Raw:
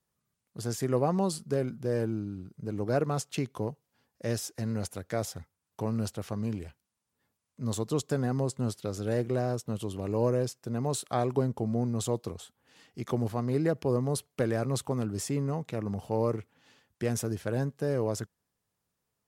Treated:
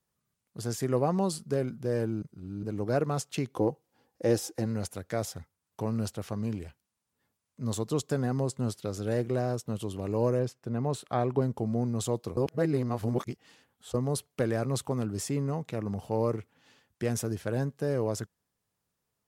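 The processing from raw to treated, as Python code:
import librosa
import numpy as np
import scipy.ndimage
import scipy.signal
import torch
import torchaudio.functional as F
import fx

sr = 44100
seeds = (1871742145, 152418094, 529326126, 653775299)

y = fx.small_body(x, sr, hz=(330.0, 490.0, 780.0), ring_ms=35, db=11, at=(3.52, 4.66))
y = fx.bass_treble(y, sr, bass_db=1, treble_db=-10, at=(10.39, 11.42))
y = fx.edit(y, sr, fx.reverse_span(start_s=2.22, length_s=0.41),
    fx.reverse_span(start_s=12.37, length_s=1.57), tone=tone)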